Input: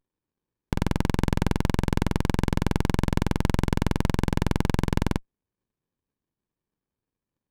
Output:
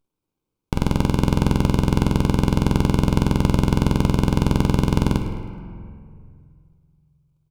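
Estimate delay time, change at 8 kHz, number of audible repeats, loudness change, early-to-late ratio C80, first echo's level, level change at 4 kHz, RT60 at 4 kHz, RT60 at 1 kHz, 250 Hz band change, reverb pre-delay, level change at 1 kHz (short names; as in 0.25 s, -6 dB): 0.106 s, +4.0 dB, 1, +6.0 dB, 6.5 dB, -13.5 dB, +4.5 dB, 1.2 s, 2.1 s, +6.5 dB, 6 ms, +4.5 dB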